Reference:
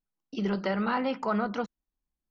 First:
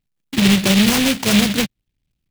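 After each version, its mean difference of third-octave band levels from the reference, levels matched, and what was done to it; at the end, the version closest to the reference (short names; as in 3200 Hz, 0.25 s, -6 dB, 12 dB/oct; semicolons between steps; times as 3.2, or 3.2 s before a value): 13.5 dB: half-waves squared off; bell 120 Hz +12 dB 1.8 oct; noise-modulated delay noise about 2800 Hz, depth 0.28 ms; gain +5 dB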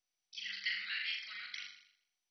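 18.0 dB: elliptic high-pass 2000 Hz, stop band 50 dB; flutter echo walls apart 7 m, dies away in 0.65 s; gain +3 dB; MP2 32 kbps 24000 Hz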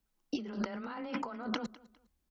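5.5 dB: negative-ratio compressor -39 dBFS, ratio -1; frequency shift +16 Hz; feedback echo 0.203 s, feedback 28%, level -21 dB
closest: third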